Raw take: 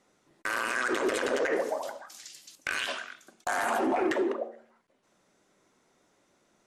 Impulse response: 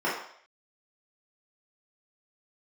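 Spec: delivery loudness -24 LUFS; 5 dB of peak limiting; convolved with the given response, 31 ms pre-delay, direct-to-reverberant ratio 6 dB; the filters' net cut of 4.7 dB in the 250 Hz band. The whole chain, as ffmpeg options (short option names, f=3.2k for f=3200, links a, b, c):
-filter_complex "[0:a]equalizer=f=250:t=o:g=-7.5,alimiter=limit=-24dB:level=0:latency=1,asplit=2[a][b];[1:a]atrim=start_sample=2205,adelay=31[c];[b][c]afir=irnorm=-1:irlink=0,volume=-19dB[d];[a][d]amix=inputs=2:normalize=0,volume=9.5dB"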